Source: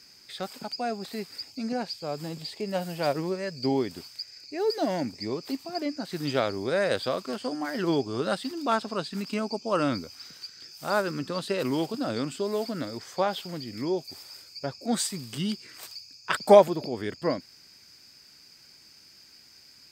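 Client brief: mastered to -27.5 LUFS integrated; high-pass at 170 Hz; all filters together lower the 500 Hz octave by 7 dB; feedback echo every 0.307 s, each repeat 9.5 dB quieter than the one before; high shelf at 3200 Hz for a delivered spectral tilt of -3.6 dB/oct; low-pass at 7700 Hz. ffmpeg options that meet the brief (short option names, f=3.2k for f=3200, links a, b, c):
-af "highpass=170,lowpass=7.7k,equalizer=f=500:t=o:g=-9,highshelf=f=3.2k:g=-5.5,aecho=1:1:307|614|921|1228:0.335|0.111|0.0365|0.012,volume=6dB"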